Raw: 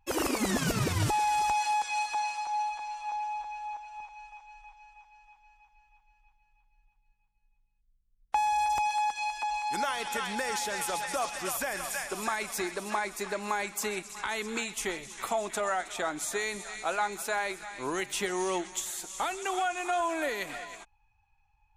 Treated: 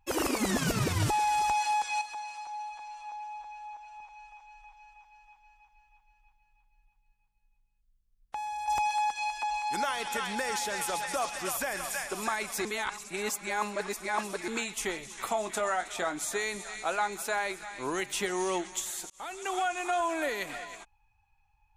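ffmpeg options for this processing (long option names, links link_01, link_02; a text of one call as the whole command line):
ffmpeg -i in.wav -filter_complex "[0:a]asettb=1/sr,asplit=3[link_01][link_02][link_03];[link_01]atrim=end=2.014[link_04];[link_02]atrim=start=2.01:end=8.68,asetpts=PTS-STARTPTS,afade=type=in:duration=0.004:curve=qsin,afade=type=out:start_time=6.666:duration=0.004:curve=qsin,acompressor=threshold=-51dB:ratio=1.5:attack=3.2:release=140:knee=1:detection=peak[link_05];[link_03]atrim=start=8.676[link_06];[link_04][link_05]acrossfade=duration=0.004:curve1=hsin:curve2=qsin[link_07];[link_07][link_06]acrossfade=duration=0.004:curve1=qsin:curve2=hsin,asettb=1/sr,asplit=3[link_08][link_09][link_10];[link_08]atrim=end=15.344[link_11];[link_09]atrim=start=15.34:end=16.16,asetpts=PTS-STARTPTS,afade=type=in:duration=0.004:curve=qsin,afade=type=out:start_time=0.816:duration=0.004:curve=qsin,asplit=2[link_12][link_13];[link_13]adelay=23,volume=-10.5dB[link_14];[link_12][link_14]amix=inputs=2:normalize=0,atrim=end_sample=36162[link_15];[link_10]atrim=start=16.156[link_16];[link_11][link_15]acrossfade=duration=0.004:curve1=hsin:curve2=qsin[link_17];[link_17][link_16]acrossfade=duration=0.004:curve1=qsin:curve2=hsin,asplit=4[link_18][link_19][link_20][link_21];[link_18]atrim=end=12.652[link_22];[link_19]atrim=start=12.648:end=14.482,asetpts=PTS-STARTPTS,areverse[link_23];[link_20]atrim=start=14.478:end=19.1,asetpts=PTS-STARTPTS,afade=type=out:start_time=4.618:duration=0.004:curve=hsin[link_24];[link_21]atrim=start=19.1,asetpts=PTS-STARTPTS,afade=type=in:duration=0.61:curve=qsin[link_25];[link_22][link_23]acrossfade=duration=0.004:curve1=hsin:curve2=hsin[link_26];[link_24][link_25]concat=n=2:v=0:a=1[link_27];[link_26][link_27]acrossfade=duration=0.004:curve1=hsin:curve2=hsin" out.wav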